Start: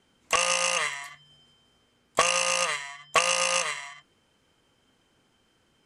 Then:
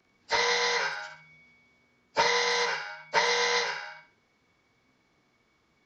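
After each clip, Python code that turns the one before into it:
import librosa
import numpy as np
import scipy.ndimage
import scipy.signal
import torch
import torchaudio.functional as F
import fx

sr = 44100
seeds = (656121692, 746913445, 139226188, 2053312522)

y = fx.partial_stretch(x, sr, pct=87)
y = fx.room_flutter(y, sr, wall_m=10.8, rt60_s=0.38)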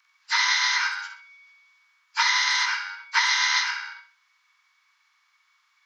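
y = scipy.signal.sosfilt(scipy.signal.butter(8, 1000.0, 'highpass', fs=sr, output='sos'), x)
y = y * 10.0 ** (5.5 / 20.0)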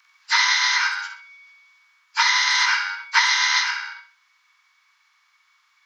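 y = fx.rider(x, sr, range_db=10, speed_s=0.5)
y = y * 10.0 ** (4.5 / 20.0)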